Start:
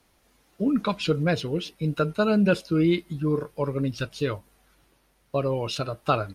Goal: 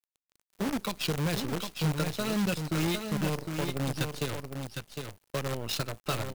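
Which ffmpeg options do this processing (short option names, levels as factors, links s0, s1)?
-filter_complex "[0:a]acrossover=split=140|3000[s0][s1][s2];[s1]acompressor=threshold=0.02:ratio=4[s3];[s0][s3][s2]amix=inputs=3:normalize=0,acrusher=bits=6:dc=4:mix=0:aa=0.000001,aecho=1:1:757:0.501"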